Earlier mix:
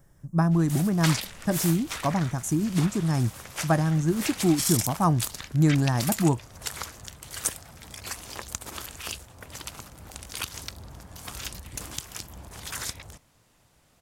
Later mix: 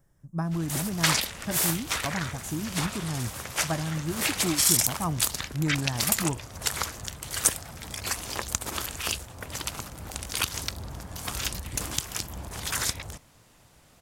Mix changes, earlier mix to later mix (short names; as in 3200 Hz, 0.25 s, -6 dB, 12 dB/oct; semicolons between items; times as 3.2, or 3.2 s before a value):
speech -7.5 dB; background +5.5 dB